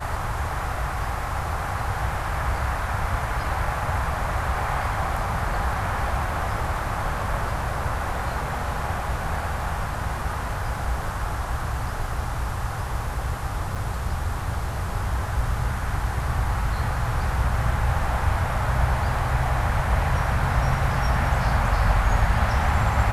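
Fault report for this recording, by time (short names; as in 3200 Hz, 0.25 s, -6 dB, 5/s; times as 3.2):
13.75–13.76 gap 6.6 ms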